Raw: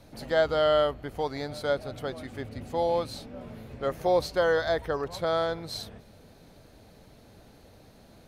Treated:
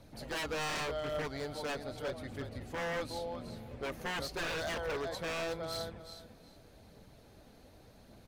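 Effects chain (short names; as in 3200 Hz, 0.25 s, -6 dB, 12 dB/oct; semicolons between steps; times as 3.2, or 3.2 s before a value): feedback echo 0.366 s, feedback 18%, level -10 dB; wavefolder -26.5 dBFS; phaser 0.86 Hz, delay 4.5 ms, feedback 26%; gain -5 dB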